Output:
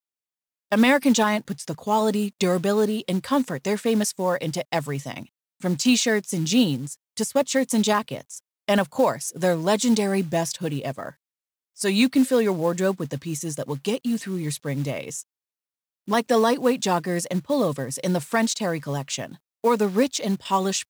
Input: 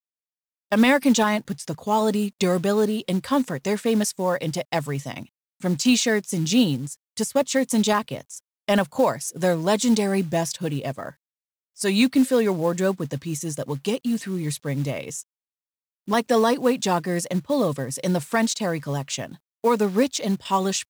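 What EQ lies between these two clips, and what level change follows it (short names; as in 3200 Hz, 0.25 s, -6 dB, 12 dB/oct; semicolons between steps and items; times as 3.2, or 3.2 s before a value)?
low shelf 71 Hz -7 dB; 0.0 dB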